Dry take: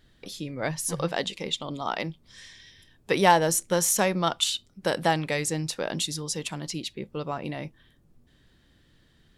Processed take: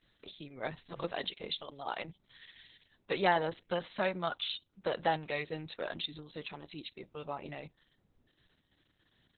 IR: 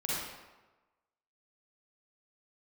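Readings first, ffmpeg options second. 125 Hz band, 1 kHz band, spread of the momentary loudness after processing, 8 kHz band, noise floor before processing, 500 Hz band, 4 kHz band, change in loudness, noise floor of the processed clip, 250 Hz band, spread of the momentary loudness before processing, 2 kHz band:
−13.5 dB, −9.0 dB, 16 LU, below −40 dB, −62 dBFS, −8.0 dB, −9.5 dB, −10.0 dB, −76 dBFS, −12.0 dB, 15 LU, −7.5 dB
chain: -filter_complex "[0:a]acrossover=split=6200[link_01][link_02];[link_02]acompressor=threshold=-42dB:ratio=4:attack=1:release=60[link_03];[link_01][link_03]amix=inputs=2:normalize=0,lowshelf=frequency=260:gain=-7,volume=-6.5dB" -ar 48000 -c:a libopus -b:a 6k

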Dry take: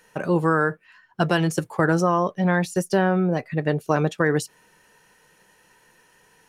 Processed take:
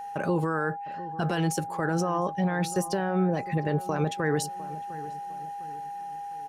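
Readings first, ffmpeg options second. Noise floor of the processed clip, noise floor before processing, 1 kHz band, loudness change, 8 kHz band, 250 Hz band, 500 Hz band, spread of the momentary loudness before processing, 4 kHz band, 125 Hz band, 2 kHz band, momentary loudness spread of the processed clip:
−37 dBFS, −59 dBFS, −2.5 dB, −7.0 dB, −0.5 dB, −5.5 dB, −6.5 dB, 5 LU, −4.0 dB, −4.5 dB, −7.5 dB, 11 LU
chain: -filter_complex "[0:a]alimiter=limit=-17.5dB:level=0:latency=1:release=44,aeval=exprs='val(0)+0.0178*sin(2*PI*810*n/s)':channel_layout=same,asplit=2[link_01][link_02];[link_02]adelay=705,lowpass=frequency=1300:poles=1,volume=-15.5dB,asplit=2[link_03][link_04];[link_04]adelay=705,lowpass=frequency=1300:poles=1,volume=0.43,asplit=2[link_05][link_06];[link_06]adelay=705,lowpass=frequency=1300:poles=1,volume=0.43,asplit=2[link_07][link_08];[link_08]adelay=705,lowpass=frequency=1300:poles=1,volume=0.43[link_09];[link_01][link_03][link_05][link_07][link_09]amix=inputs=5:normalize=0"

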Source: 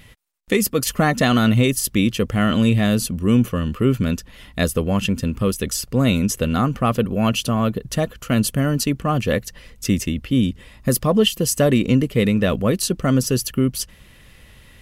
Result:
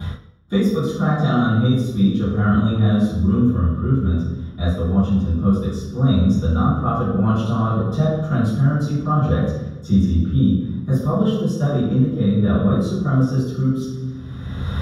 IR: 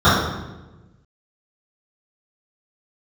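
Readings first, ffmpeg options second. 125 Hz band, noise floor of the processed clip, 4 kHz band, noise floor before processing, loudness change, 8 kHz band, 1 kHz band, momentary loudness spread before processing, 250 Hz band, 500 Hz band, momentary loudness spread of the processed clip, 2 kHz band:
+4.0 dB, −32 dBFS, −9.5 dB, −48 dBFS, +0.5 dB, below −15 dB, −0.5 dB, 7 LU, +1.0 dB, −3.5 dB, 7 LU, −6.5 dB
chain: -filter_complex "[1:a]atrim=start_sample=2205[link_01];[0:a][link_01]afir=irnorm=-1:irlink=0,dynaudnorm=framelen=180:gausssize=5:maxgain=11.5dB,volume=-5.5dB"

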